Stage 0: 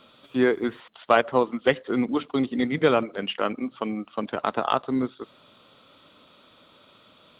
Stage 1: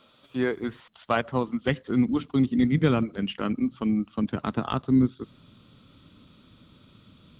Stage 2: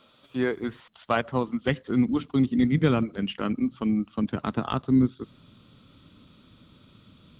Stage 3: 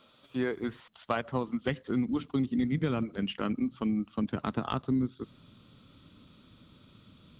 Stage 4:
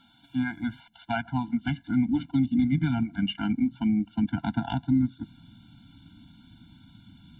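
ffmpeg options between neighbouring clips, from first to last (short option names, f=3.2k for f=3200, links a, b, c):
-af "asubboost=boost=11.5:cutoff=190,volume=-4.5dB"
-af anull
-af "acompressor=threshold=-23dB:ratio=4,volume=-2.5dB"
-af "afftfilt=real='re*eq(mod(floor(b*sr/1024/340),2),0)':imag='im*eq(mod(floor(b*sr/1024/340),2),0)':win_size=1024:overlap=0.75,volume=5.5dB"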